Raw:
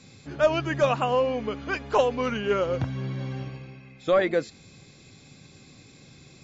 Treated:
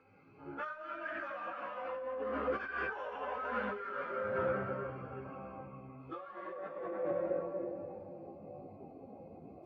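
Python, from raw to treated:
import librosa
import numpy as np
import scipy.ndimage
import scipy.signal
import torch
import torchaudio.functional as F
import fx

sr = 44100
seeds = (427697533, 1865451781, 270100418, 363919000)

y = fx.wiener(x, sr, points=25)
y = scipy.signal.sosfilt(scipy.signal.butter(2, 6100.0, 'lowpass', fs=sr, output='sos'), y)
y = fx.low_shelf(y, sr, hz=360.0, db=9.5)
y = fx.notch(y, sr, hz=3900.0, q=10.0)
y = fx.room_shoebox(y, sr, seeds[0], volume_m3=2200.0, walls='mixed', distance_m=4.1)
y = fx.filter_sweep_bandpass(y, sr, from_hz=1500.0, to_hz=710.0, start_s=3.21, end_s=5.64, q=3.4)
y = 10.0 ** (-15.0 / 20.0) * np.tanh(y / 10.0 ** (-15.0 / 20.0))
y = fx.peak_eq(y, sr, hz=130.0, db=-13.5, octaves=0.5)
y = fx.over_compress(y, sr, threshold_db=-39.0, ratio=-1.0)
y = fx.stretch_vocoder_free(y, sr, factor=1.5)
y = y * 10.0 ** (2.5 / 20.0)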